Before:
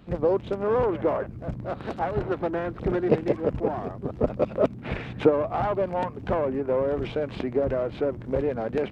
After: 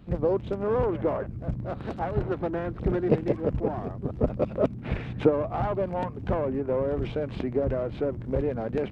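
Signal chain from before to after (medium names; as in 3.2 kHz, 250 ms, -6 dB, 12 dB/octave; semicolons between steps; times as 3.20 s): bass shelf 230 Hz +8.5 dB; trim -4 dB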